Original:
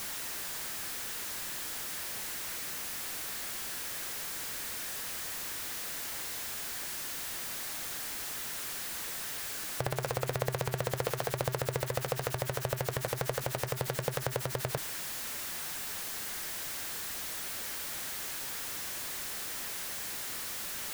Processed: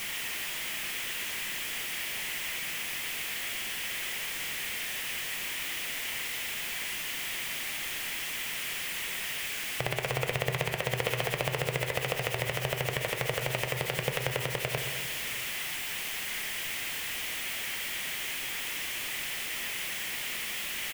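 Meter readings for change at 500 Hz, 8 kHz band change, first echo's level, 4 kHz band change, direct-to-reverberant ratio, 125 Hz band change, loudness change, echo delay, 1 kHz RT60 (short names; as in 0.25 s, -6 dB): +1.0 dB, +0.5 dB, -13.5 dB, +6.5 dB, 5.5 dB, +1.0 dB, +3.0 dB, 0.126 s, 1.8 s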